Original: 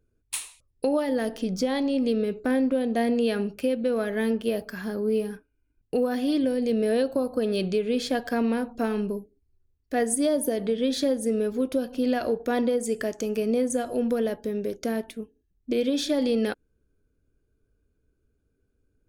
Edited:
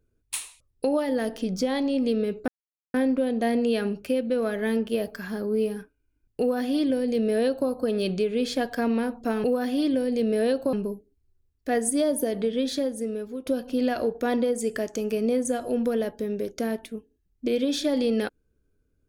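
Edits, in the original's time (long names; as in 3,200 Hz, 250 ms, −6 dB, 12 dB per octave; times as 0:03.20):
0:02.48: splice in silence 0.46 s
0:05.94–0:07.23: duplicate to 0:08.98
0:10.70–0:11.71: fade out, to −10.5 dB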